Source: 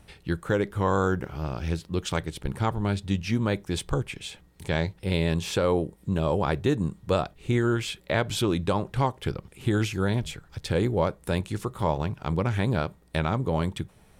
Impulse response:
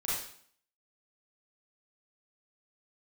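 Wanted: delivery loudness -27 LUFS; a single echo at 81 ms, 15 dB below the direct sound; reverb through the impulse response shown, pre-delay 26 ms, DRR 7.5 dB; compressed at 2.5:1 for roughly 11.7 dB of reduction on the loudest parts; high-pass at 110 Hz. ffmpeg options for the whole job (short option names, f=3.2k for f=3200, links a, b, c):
-filter_complex "[0:a]highpass=110,acompressor=threshold=-38dB:ratio=2.5,aecho=1:1:81:0.178,asplit=2[a][b];[1:a]atrim=start_sample=2205,adelay=26[c];[b][c]afir=irnorm=-1:irlink=0,volume=-13dB[d];[a][d]amix=inputs=2:normalize=0,volume=11dB"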